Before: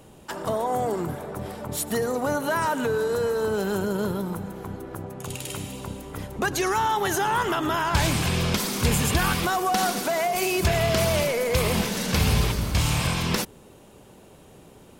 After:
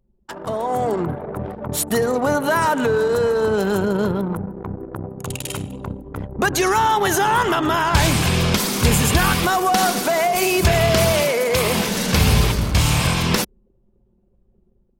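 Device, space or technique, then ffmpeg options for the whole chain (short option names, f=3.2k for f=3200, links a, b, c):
voice memo with heavy noise removal: -filter_complex "[0:a]asettb=1/sr,asplit=3[a][b][c];[a]atrim=end=11.124[d];[b]atrim=start=11.12:end=11.88,asetpts=PTS-STARTPTS,afade=t=in:d=0.004:c=qsin,afade=t=out:st=0.756:d=0.004:c=qsin,highpass=f=190:p=1[e];[c]atrim=start=11.876[f];[d][e]acrossfade=d=0.004:c1=hsin:c2=qsin[g];[g][f]acrossfade=d=0.004:c1=qsin:c2=hsin,anlmdn=6.31,dynaudnorm=f=490:g=3:m=6.5dB"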